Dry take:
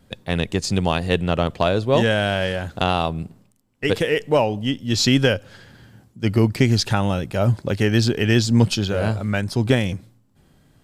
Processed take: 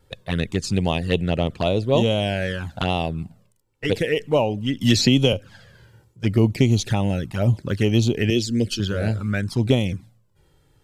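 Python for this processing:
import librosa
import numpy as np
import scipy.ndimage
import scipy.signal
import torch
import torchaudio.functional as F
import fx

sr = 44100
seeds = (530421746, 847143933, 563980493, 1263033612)

y = fx.fixed_phaser(x, sr, hz=370.0, stages=4, at=(8.3, 8.8))
y = fx.env_flanger(y, sr, rest_ms=2.3, full_db=-14.5)
y = fx.band_squash(y, sr, depth_pct=100, at=(4.81, 5.33))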